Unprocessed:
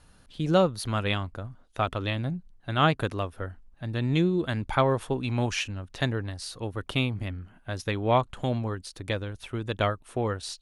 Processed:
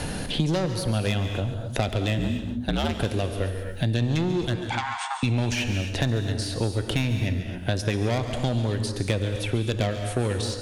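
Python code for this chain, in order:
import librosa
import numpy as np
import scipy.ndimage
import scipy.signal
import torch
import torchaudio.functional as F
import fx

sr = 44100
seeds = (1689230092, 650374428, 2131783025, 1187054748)

p1 = fx.peak_eq(x, sr, hz=1200.0, db=-13.0, octaves=0.65)
p2 = fx.rider(p1, sr, range_db=10, speed_s=2.0)
p3 = p1 + (p2 * librosa.db_to_amplitude(-1.0))
p4 = 10.0 ** (-20.0 / 20.0) * np.tanh(p3 / 10.0 ** (-20.0 / 20.0))
p5 = fx.ring_mod(p4, sr, carrier_hz=68.0, at=(2.18, 2.98))
p6 = fx.brickwall_bandpass(p5, sr, low_hz=700.0, high_hz=9000.0, at=(4.55, 5.23))
p7 = p6 + fx.echo_single(p6, sr, ms=138, db=-13.5, dry=0)
p8 = fx.rev_gated(p7, sr, seeds[0], gate_ms=290, shape='flat', drr_db=8.0)
y = fx.band_squash(p8, sr, depth_pct=100)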